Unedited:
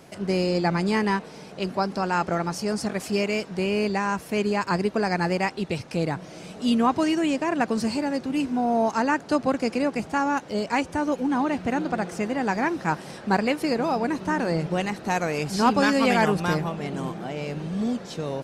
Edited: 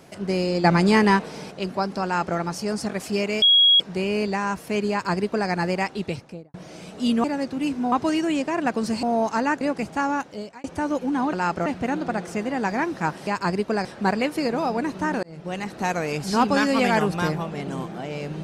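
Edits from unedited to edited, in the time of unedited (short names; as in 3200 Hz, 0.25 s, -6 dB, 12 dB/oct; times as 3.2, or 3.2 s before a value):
0.64–1.51 gain +6 dB
2.04–2.37 copy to 11.5
3.42 add tone 3310 Hz -12 dBFS 0.38 s
4.53–5.11 copy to 13.11
5.65–6.16 studio fade out
7.97–8.65 move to 6.86
9.23–9.78 cut
10.28–10.81 fade out
14.49–15 fade in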